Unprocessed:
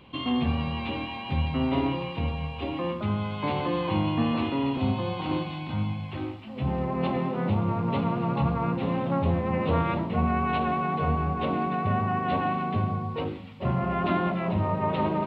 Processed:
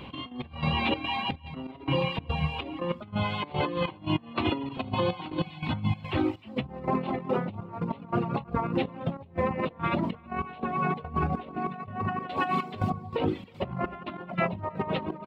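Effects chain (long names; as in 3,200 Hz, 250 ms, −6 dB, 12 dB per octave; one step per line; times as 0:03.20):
reverb reduction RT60 1.1 s
0:12.29–0:12.90: bass and treble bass −8 dB, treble +13 dB
compressor whose output falls as the input rises −33 dBFS, ratio −0.5
gate pattern "x..x..xxx.xx" 144 BPM −12 dB
slap from a distant wall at 55 metres, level −27 dB
level +5.5 dB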